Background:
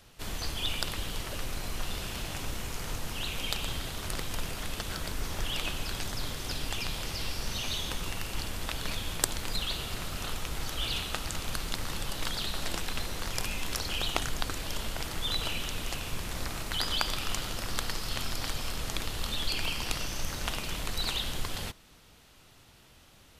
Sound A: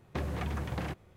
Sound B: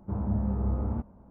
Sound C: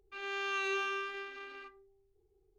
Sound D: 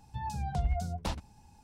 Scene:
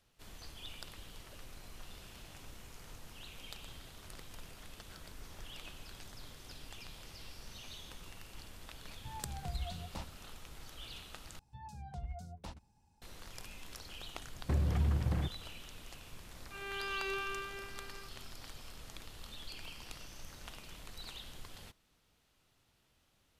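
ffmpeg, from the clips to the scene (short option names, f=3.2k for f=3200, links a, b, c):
-filter_complex "[4:a]asplit=2[a][b];[0:a]volume=-16dB[c];[1:a]aemphasis=mode=reproduction:type=bsi[d];[3:a]lowpass=5.5k[e];[c]asplit=2[f][g];[f]atrim=end=11.394[h];[b]atrim=end=1.63,asetpts=PTS-STARTPTS,volume=-13dB[i];[g]atrim=start=13.016[j];[a]atrim=end=1.63,asetpts=PTS-STARTPTS,volume=-10dB,afade=t=in:d=0.004:c=hsin,afade=t=out:st=1.626:d=0.004:c=hsin,adelay=392490S[k];[d]atrim=end=1.16,asetpts=PTS-STARTPTS,volume=-6dB,afade=t=in:d=0.004:c=hsin,afade=t=out:st=1.156:d=0.004:c=hsin,adelay=14340[l];[e]atrim=end=2.58,asetpts=PTS-STARTPTS,volume=-4dB,afade=t=in:d=0.004:c=hsin,afade=t=out:st=2.576:d=0.004:c=hsin,adelay=16390[m];[h][i]acrossfade=d=0.004:c1=hsin:c2=hsin[n];[n][j]acrossfade=d=0.004:c1=hsin:c2=hsin[o];[o][k][l][m]amix=inputs=4:normalize=0"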